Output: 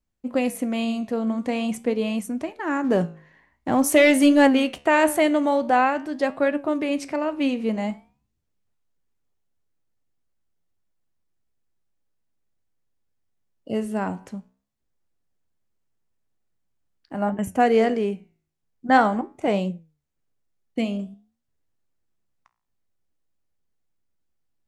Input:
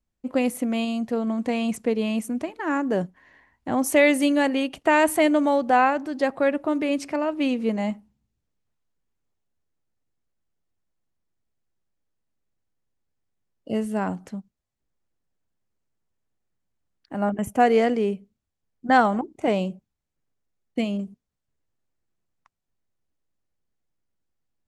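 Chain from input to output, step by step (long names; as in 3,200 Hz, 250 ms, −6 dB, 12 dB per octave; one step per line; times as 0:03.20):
0:02.84–0:04.79: leveller curve on the samples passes 1
flanger 0.46 Hz, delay 9.8 ms, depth 9.6 ms, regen +78%
level +4.5 dB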